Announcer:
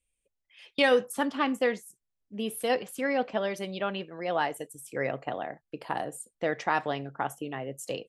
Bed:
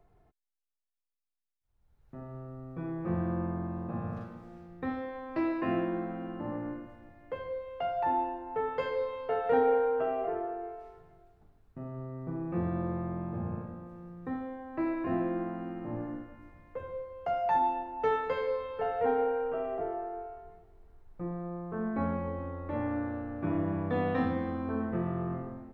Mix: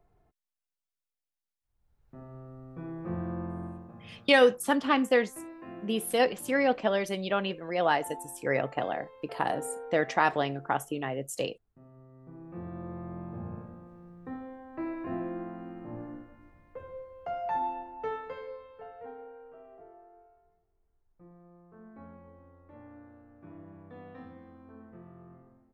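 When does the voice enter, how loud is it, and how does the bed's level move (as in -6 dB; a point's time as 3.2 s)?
3.50 s, +2.5 dB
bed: 3.67 s -3 dB
3.96 s -14 dB
12.08 s -14 dB
13.19 s -4 dB
17.86 s -4 dB
19.21 s -18 dB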